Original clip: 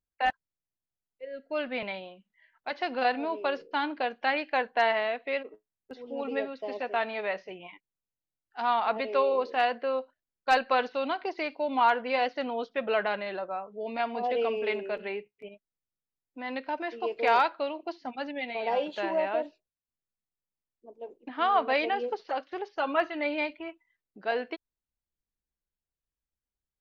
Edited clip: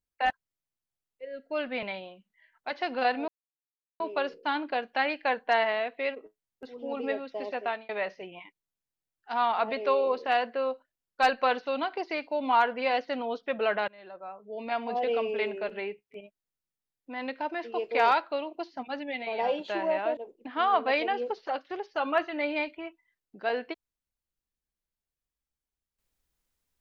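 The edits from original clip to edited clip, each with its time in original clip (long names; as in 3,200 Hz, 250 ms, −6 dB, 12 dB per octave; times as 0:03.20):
0:03.28: splice in silence 0.72 s
0:06.91–0:07.17: fade out
0:13.16–0:14.10: fade in, from −24 dB
0:19.45–0:20.99: remove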